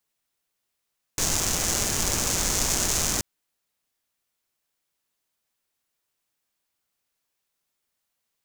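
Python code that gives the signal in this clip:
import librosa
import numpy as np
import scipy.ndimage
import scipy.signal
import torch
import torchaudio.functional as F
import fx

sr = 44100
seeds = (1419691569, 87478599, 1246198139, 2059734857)

y = fx.rain(sr, seeds[0], length_s=2.03, drops_per_s=280.0, hz=6500.0, bed_db=-1)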